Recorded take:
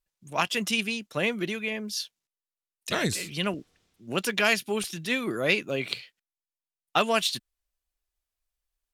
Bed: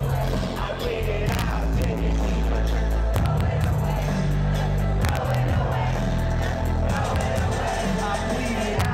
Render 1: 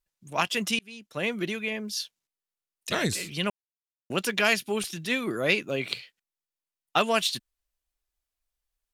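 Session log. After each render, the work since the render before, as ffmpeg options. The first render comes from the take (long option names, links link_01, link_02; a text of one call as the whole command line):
ffmpeg -i in.wav -filter_complex "[0:a]asplit=4[link_01][link_02][link_03][link_04];[link_01]atrim=end=0.79,asetpts=PTS-STARTPTS,afade=type=out:start_time=0.786:duration=0.004:curve=hsin[link_05];[link_02]atrim=start=0.79:end=3.5,asetpts=PTS-STARTPTS,afade=type=in:duration=0.6,afade=type=out:start_time=2.706:duration=0.004:curve=hsin[link_06];[link_03]atrim=start=3.5:end=4.1,asetpts=PTS-STARTPTS,volume=0[link_07];[link_04]atrim=start=4.1,asetpts=PTS-STARTPTS,afade=type=in:duration=0.004:curve=hsin[link_08];[link_05][link_06][link_07][link_08]concat=n=4:v=0:a=1" out.wav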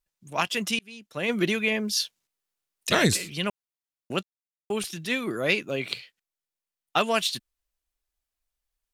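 ffmpeg -i in.wav -filter_complex "[0:a]asplit=3[link_01][link_02][link_03];[link_01]afade=type=out:start_time=1.28:duration=0.02[link_04];[link_02]acontrast=53,afade=type=in:start_time=1.28:duration=0.02,afade=type=out:start_time=3.16:duration=0.02[link_05];[link_03]afade=type=in:start_time=3.16:duration=0.02[link_06];[link_04][link_05][link_06]amix=inputs=3:normalize=0,asplit=3[link_07][link_08][link_09];[link_07]atrim=end=4.23,asetpts=PTS-STARTPTS,afade=type=out:start_time=4.226:duration=0.004:curve=hsin[link_10];[link_08]atrim=start=4.23:end=4.7,asetpts=PTS-STARTPTS,volume=0[link_11];[link_09]atrim=start=4.7,asetpts=PTS-STARTPTS,afade=type=in:duration=0.004:curve=hsin[link_12];[link_10][link_11][link_12]concat=n=3:v=0:a=1" out.wav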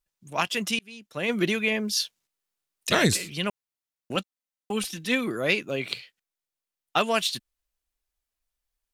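ffmpeg -i in.wav -filter_complex "[0:a]asettb=1/sr,asplit=3[link_01][link_02][link_03];[link_01]atrim=end=4.154[link_04];[link_02]atrim=start=4.15:end=5.28,asetpts=PTS-STARTPTS,afade=type=in:duration=0.004:curve=qsin,afade=type=out:start_time=1.126:duration=0.004:curve=qsin,aecho=1:1:3.9:0.64,atrim=end_sample=49833[link_05];[link_03]atrim=start=5.276[link_06];[link_04][link_05]acrossfade=duration=0.004:curve1=hsin:curve2=qsin[link_07];[link_07][link_06]acrossfade=duration=0.004:curve1=qsin:curve2=hsin" out.wav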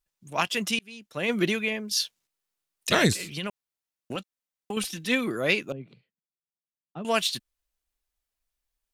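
ffmpeg -i in.wav -filter_complex "[0:a]asettb=1/sr,asplit=3[link_01][link_02][link_03];[link_01]atrim=end=3.124[link_04];[link_02]atrim=start=3.12:end=4.77,asetpts=PTS-STARTPTS,afade=type=in:duration=0.004:curve=qsin,afade=type=out:start_time=1.646:duration=0.004:curve=qsin,acompressor=threshold=-27dB:ratio=6:attack=3.2:release=140:knee=1:detection=peak[link_05];[link_03]atrim=start=4.766[link_06];[link_04][link_05]acrossfade=duration=0.004:curve1=hsin:curve2=qsin[link_07];[link_07][link_06]acrossfade=duration=0.004:curve1=qsin:curve2=hsin,asettb=1/sr,asplit=3[link_08][link_09][link_10];[link_08]atrim=end=5.724[link_11];[link_09]atrim=start=5.72:end=7.05,asetpts=PTS-STARTPTS,afade=type=in:duration=0.004:curve=qsin,afade=type=out:start_time=1.326:duration=0.004:curve=qsin,bandpass=frequency=170:width_type=q:width=1.9[link_12];[link_10]atrim=start=7.046[link_13];[link_11][link_12]acrossfade=duration=0.004:curve1=hsin:curve2=qsin[link_14];[link_14][link_13]acrossfade=duration=0.004:curve1=qsin:curve2=hsin,asplit=2[link_15][link_16];[link_15]atrim=end=1.91,asetpts=PTS-STARTPTS,afade=type=out:start_time=1.47:duration=0.44:silence=0.354813[link_17];[link_16]atrim=start=1.91,asetpts=PTS-STARTPTS,afade=type=in:duration=0.004:curve=hsin:silence=0.354813[link_18];[link_17][link_18]concat=n=2:v=0:a=1" out.wav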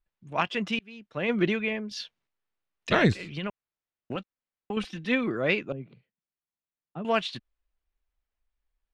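ffmpeg -i in.wav -af "lowpass=2600,lowshelf=frequency=72:gain=7" out.wav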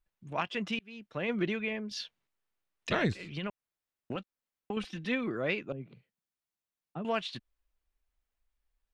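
ffmpeg -i in.wav -af "acompressor=threshold=-39dB:ratio=1.5" out.wav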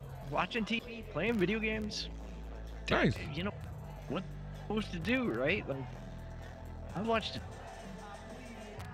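ffmpeg -i in.wav -i bed.wav -filter_complex "[1:a]volume=-22.5dB[link_01];[0:a][link_01]amix=inputs=2:normalize=0" out.wav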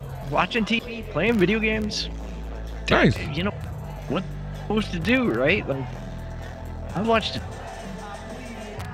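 ffmpeg -i in.wav -af "volume=11.5dB" out.wav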